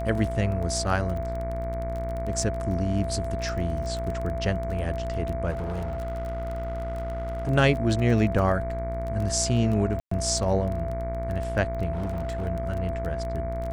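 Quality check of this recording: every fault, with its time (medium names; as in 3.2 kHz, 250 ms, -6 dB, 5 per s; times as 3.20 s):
buzz 60 Hz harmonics 39 -32 dBFS
crackle 20 per s -30 dBFS
whine 670 Hz -31 dBFS
5.50–7.49 s: clipped -27 dBFS
10.00–10.11 s: dropout 114 ms
11.92–12.46 s: clipped -25.5 dBFS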